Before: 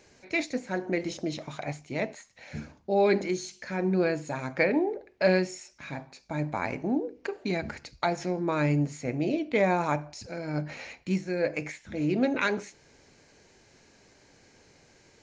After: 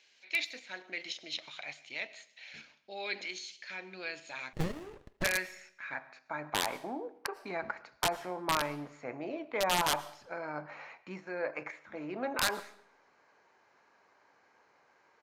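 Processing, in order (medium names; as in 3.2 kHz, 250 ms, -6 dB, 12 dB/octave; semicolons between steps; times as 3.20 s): in parallel at +2.5 dB: level held to a coarse grid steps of 19 dB; on the sum: band-pass sweep 3.2 kHz -> 1.1 kHz, 4.31–6.72 s; integer overflow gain 22 dB; on a send at -19 dB: reverberation RT60 0.65 s, pre-delay 70 ms; on the sum: resampled via 32 kHz; 4.53–5.24 s: sliding maximum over 33 samples; trim +2 dB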